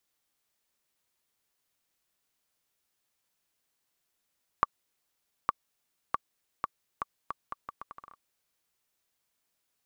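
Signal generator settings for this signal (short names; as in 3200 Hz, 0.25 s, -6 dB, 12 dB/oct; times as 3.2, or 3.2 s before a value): bouncing ball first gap 0.86 s, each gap 0.76, 1150 Hz, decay 25 ms -9 dBFS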